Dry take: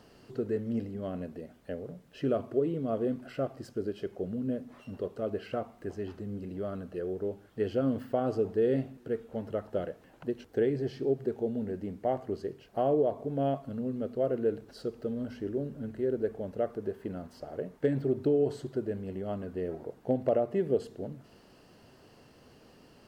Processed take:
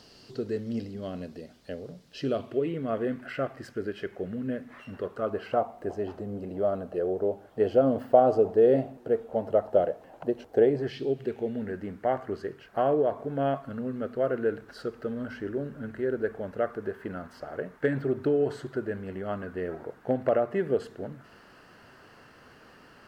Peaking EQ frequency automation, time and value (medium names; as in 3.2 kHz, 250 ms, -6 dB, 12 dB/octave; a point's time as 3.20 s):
peaking EQ +13.5 dB 1.3 oct
2.28 s 4.7 kHz
2.80 s 1.8 kHz
4.91 s 1.8 kHz
5.76 s 690 Hz
10.75 s 690 Hz
11.00 s 3.6 kHz
11.77 s 1.5 kHz